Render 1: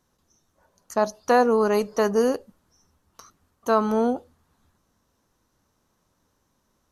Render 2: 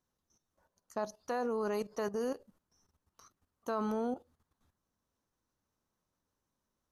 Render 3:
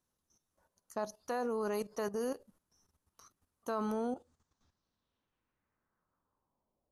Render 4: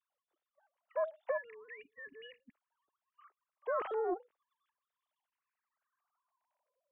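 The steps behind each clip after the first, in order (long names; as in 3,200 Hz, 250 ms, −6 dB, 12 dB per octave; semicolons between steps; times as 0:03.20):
output level in coarse steps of 13 dB; level −7.5 dB
low-pass filter sweep 11,000 Hz → 610 Hz, 0:03.95–0:06.92; level −1 dB
three sine waves on the formant tracks; gain on a spectral selection 0:01.38–0:02.54, 290–1,700 Hz −26 dB; highs frequency-modulated by the lows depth 0.13 ms; level +4 dB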